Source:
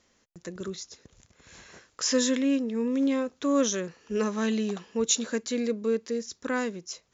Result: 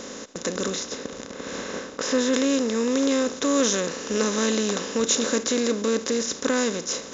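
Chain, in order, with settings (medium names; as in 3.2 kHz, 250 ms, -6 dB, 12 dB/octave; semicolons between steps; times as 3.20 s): spectral levelling over time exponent 0.4; 0.78–2.32 s: low-pass 4.5 kHz -> 2.4 kHz 6 dB/octave; tape noise reduction on one side only decoder only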